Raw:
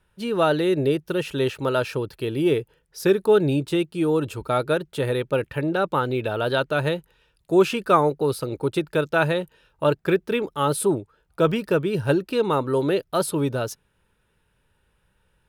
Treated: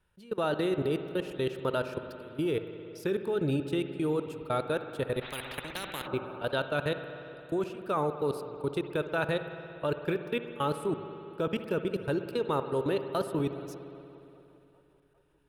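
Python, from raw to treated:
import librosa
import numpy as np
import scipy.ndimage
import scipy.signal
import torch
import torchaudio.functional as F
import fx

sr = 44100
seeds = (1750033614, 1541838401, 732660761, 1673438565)

p1 = fx.level_steps(x, sr, step_db=23)
p2 = p1 + fx.echo_wet_bandpass(p1, sr, ms=399, feedback_pct=56, hz=560.0, wet_db=-21.5, dry=0)
p3 = fx.rev_spring(p2, sr, rt60_s=2.9, pass_ms=(59,), chirp_ms=45, drr_db=8.5)
p4 = fx.spectral_comp(p3, sr, ratio=4.0, at=(5.21, 6.06), fade=0.02)
y = F.gain(torch.from_numpy(p4), -5.0).numpy()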